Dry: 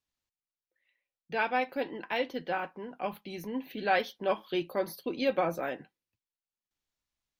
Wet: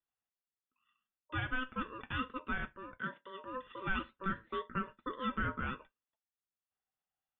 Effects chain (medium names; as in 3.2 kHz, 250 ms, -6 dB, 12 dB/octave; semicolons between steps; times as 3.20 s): peak limiter -22.5 dBFS, peak gain reduction 9 dB; rippled Chebyshev low-pass 2.8 kHz, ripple 9 dB; ring modulator 770 Hz; 2.98–3.46 s: high-pass 160 Hz 24 dB/octave; trim +2.5 dB